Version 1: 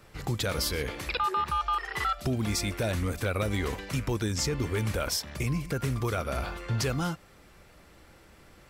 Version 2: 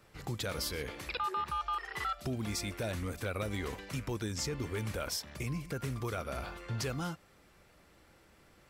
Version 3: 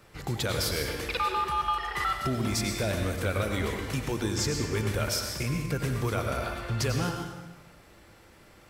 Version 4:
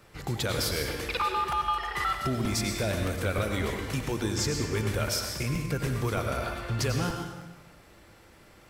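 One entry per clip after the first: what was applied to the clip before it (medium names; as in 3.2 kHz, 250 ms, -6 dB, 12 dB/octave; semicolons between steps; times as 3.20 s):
bass shelf 64 Hz -5.5 dB; trim -6.5 dB
plate-style reverb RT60 1.2 s, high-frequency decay 0.85×, pre-delay 80 ms, DRR 3.5 dB; trim +6 dB
crackling interface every 0.31 s, samples 128, repeat, from 0.59 s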